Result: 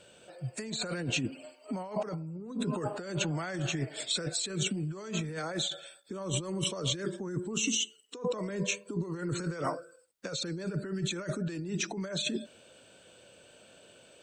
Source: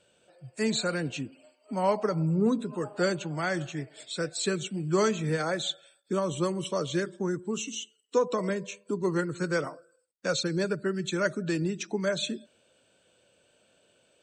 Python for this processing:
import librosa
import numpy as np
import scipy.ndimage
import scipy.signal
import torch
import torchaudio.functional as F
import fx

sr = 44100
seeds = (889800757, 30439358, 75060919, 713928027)

y = fx.over_compress(x, sr, threshold_db=-37.0, ratio=-1.0)
y = y * 10.0 ** (2.0 / 20.0)